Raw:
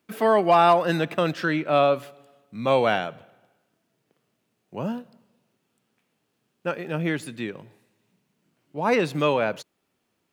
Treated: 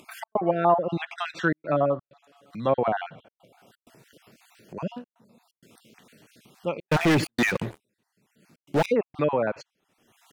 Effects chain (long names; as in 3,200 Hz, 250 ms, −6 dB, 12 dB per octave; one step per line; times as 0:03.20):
time-frequency cells dropped at random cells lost 36%
treble cut that deepens with the level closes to 1,000 Hz, closed at −18 dBFS
0:01.34–0:02.66: comb filter 6.1 ms, depth 35%
0:06.88–0:08.86: leveller curve on the samples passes 5
gate pattern "xx.xxxxxxxxxx.x" 128 BPM −60 dB
upward compression, threshold −38 dBFS